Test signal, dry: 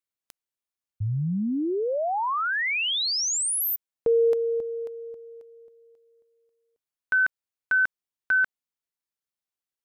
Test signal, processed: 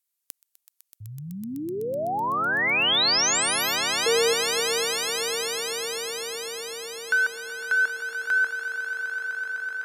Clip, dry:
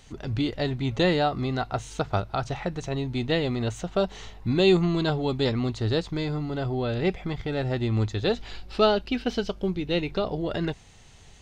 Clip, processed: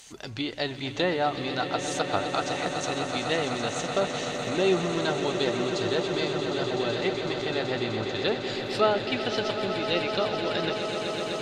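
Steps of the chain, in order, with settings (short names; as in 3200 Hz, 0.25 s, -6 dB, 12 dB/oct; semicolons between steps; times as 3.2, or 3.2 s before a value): treble ducked by the level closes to 1700 Hz, closed at -19 dBFS; RIAA curve recording; swelling echo 0.126 s, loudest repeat 8, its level -12 dB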